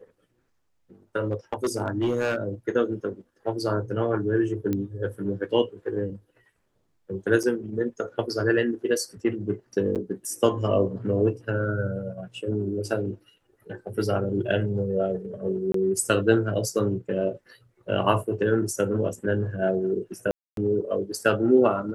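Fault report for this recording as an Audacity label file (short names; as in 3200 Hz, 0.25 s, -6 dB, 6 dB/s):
1.310000	2.360000	clipped -19.5 dBFS
4.730000	4.730000	pop -15 dBFS
7.430000	7.440000	gap 6.1 ms
9.950000	9.960000	gap 8 ms
15.720000	15.740000	gap 23 ms
20.310000	20.570000	gap 0.262 s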